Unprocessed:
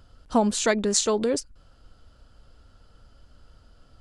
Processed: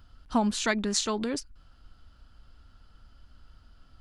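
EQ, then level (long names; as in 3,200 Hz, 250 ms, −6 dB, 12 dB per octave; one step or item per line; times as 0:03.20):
octave-band graphic EQ 125/500/8,000 Hz −4/−11/−8 dB
0.0 dB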